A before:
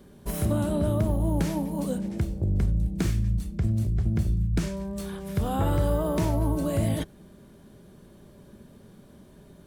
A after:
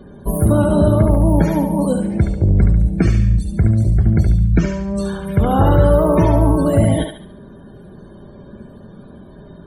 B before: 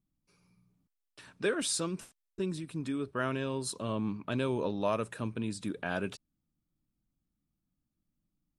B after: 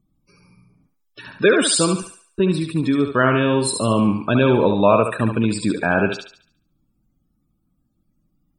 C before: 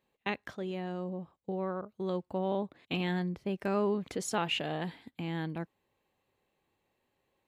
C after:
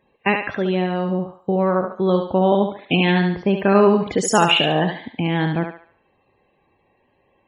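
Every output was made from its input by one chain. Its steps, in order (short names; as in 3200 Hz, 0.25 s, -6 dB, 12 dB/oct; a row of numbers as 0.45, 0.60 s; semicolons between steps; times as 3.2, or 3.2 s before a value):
loudest bins only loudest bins 64; on a send: thinning echo 71 ms, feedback 42%, high-pass 480 Hz, level -4.5 dB; on the sum: normalise peaks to -1.5 dBFS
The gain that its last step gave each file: +12.0, +15.5, +15.5 dB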